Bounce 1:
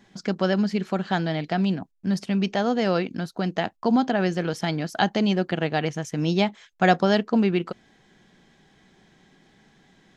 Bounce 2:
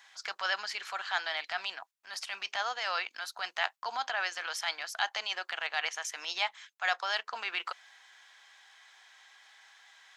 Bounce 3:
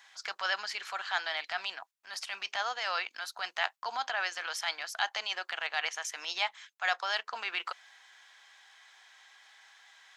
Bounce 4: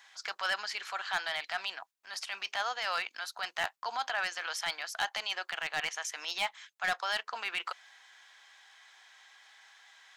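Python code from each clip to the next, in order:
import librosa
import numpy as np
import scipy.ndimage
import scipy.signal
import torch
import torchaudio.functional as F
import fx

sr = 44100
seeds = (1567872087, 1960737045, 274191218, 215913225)

y1 = scipy.signal.sosfilt(scipy.signal.butter(4, 950.0, 'highpass', fs=sr, output='sos'), x)
y1 = fx.transient(y1, sr, attack_db=-7, sustain_db=0)
y1 = fx.rider(y1, sr, range_db=4, speed_s=0.5)
y1 = y1 * librosa.db_to_amplitude(1.5)
y2 = y1
y3 = np.clip(10.0 ** (23.5 / 20.0) * y2, -1.0, 1.0) / 10.0 ** (23.5 / 20.0)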